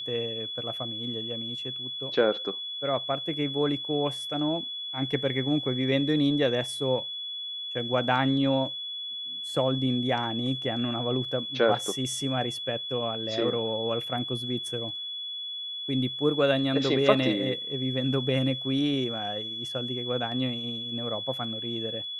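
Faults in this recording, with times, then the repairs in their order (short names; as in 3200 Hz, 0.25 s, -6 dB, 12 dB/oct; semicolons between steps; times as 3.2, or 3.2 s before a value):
tone 3400 Hz -33 dBFS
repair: notch 3400 Hz, Q 30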